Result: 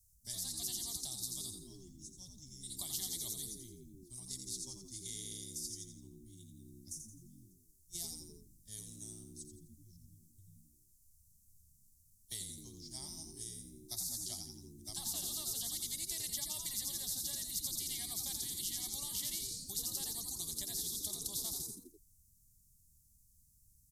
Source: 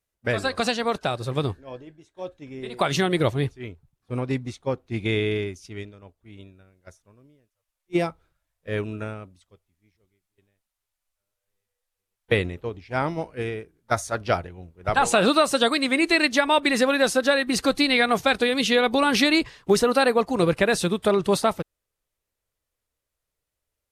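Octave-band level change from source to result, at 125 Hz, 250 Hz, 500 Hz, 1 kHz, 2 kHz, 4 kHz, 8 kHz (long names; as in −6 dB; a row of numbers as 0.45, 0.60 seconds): −22.5, −28.0, −36.5, −35.5, −36.0, −14.5, −1.5 decibels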